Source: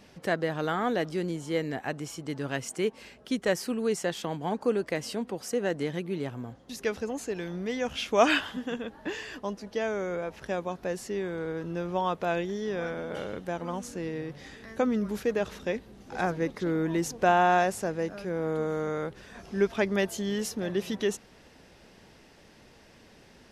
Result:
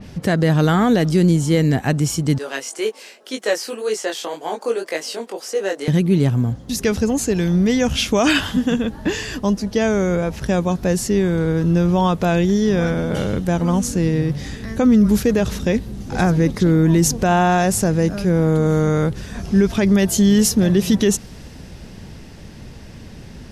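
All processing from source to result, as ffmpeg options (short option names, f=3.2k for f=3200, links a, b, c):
-filter_complex "[0:a]asettb=1/sr,asplit=3[a][b][c];[a]atrim=end=2.384[d];[b]atrim=start=2.38:end=5.88,asetpts=PTS-STARTPTS,afade=t=in:d=0.004:c=qsin,afade=t=out:st=3.496:d=0.004:c=qsin,highpass=f=400:w=0.5412,highpass=f=400:w=1.3066,acrossover=split=5400[e][f];[f]acompressor=threshold=-48dB:ratio=4:attack=1:release=60[g];[e][g]amix=inputs=2:normalize=0,flanger=delay=18.5:depth=3.4:speed=1.9[h];[c]atrim=start=5.876[i];[d][h]acrossfade=d=0.004:c1=hsin:c2=qsin[j];[j][i]acrossfade=d=0.004:c1=qsin:c2=hsin,bass=f=250:g=15,treble=f=4k:g=3,alimiter=level_in=15dB:limit=-1dB:release=50:level=0:latency=1,adynamicequalizer=threshold=0.02:dfrequency=3900:dqfactor=0.7:tfrequency=3900:tqfactor=0.7:attack=5:release=100:ratio=0.375:range=3:mode=boostabove:tftype=highshelf,volume=-5.5dB"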